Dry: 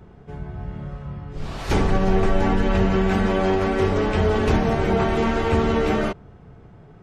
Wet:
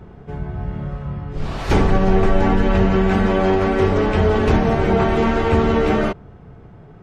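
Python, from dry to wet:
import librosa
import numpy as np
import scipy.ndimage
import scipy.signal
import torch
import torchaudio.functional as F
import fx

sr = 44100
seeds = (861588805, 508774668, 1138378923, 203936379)

p1 = fx.high_shelf(x, sr, hz=4400.0, db=-6.5)
p2 = fx.rider(p1, sr, range_db=4, speed_s=0.5)
p3 = p1 + (p2 * librosa.db_to_amplitude(-1.5))
y = p3 * librosa.db_to_amplitude(-1.5)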